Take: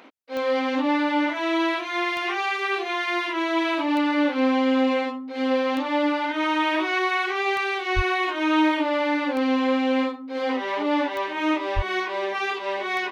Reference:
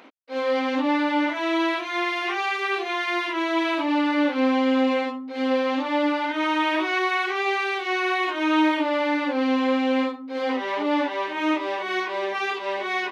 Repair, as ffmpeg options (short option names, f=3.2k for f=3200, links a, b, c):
-filter_complex "[0:a]adeclick=t=4,asplit=3[a][b][c];[a]afade=t=out:st=7.95:d=0.02[d];[b]highpass=f=140:w=0.5412,highpass=f=140:w=1.3066,afade=t=in:st=7.95:d=0.02,afade=t=out:st=8.07:d=0.02[e];[c]afade=t=in:st=8.07:d=0.02[f];[d][e][f]amix=inputs=3:normalize=0,asplit=3[g][h][i];[g]afade=t=out:st=11.75:d=0.02[j];[h]highpass=f=140:w=0.5412,highpass=f=140:w=1.3066,afade=t=in:st=11.75:d=0.02,afade=t=out:st=11.87:d=0.02[k];[i]afade=t=in:st=11.87:d=0.02[l];[j][k][l]amix=inputs=3:normalize=0"